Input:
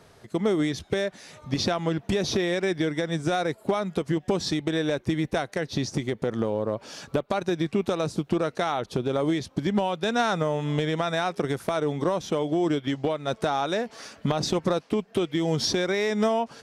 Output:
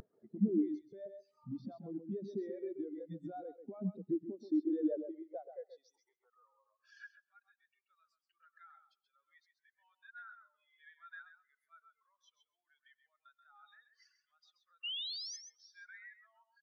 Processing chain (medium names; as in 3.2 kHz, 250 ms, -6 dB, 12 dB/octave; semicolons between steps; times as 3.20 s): reverb removal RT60 2 s; peaking EQ 160 Hz -11 dB 0.56 oct; compression 6:1, threshold -36 dBFS, peak gain reduction 15 dB; peak limiter -35.5 dBFS, peak gain reduction 11.5 dB; upward compressor, threshold -44 dBFS; high-pass sweep 180 Hz -> 1.6 kHz, 4.10–6.78 s; painted sound rise, 14.83–15.37 s, 2.7–6.3 kHz -37 dBFS; feedback delay 132 ms, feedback 31%, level -4 dB; on a send at -13 dB: reverberation RT60 0.85 s, pre-delay 80 ms; on the sum: spectral contrast expander 2.5:1; trim +5 dB